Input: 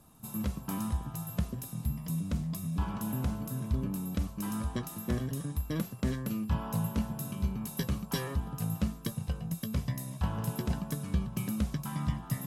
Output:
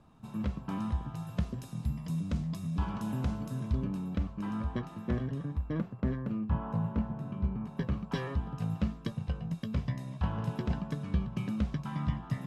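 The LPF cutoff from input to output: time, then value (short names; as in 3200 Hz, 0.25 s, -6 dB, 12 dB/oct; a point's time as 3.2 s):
0.76 s 3200 Hz
1.65 s 5600 Hz
3.66 s 5600 Hz
4.25 s 2600 Hz
5.24 s 2600 Hz
5.9 s 1600 Hz
7.69 s 1600 Hz
8.27 s 3500 Hz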